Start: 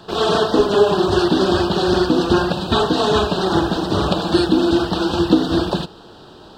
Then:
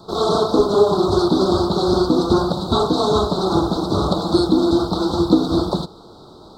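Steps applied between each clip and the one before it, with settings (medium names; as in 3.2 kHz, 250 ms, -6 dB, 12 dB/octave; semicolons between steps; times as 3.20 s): elliptic band-stop 1.3–3.8 kHz, stop band 40 dB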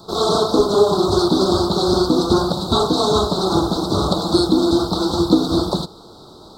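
treble shelf 4.1 kHz +8 dB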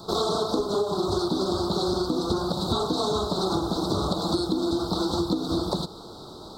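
compression 10:1, threshold -22 dBFS, peak gain reduction 14 dB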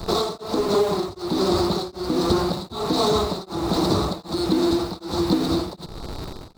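in parallel at -10.5 dB: Schmitt trigger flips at -35 dBFS; on the sum: tremolo of two beating tones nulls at 1.3 Hz; trim +4.5 dB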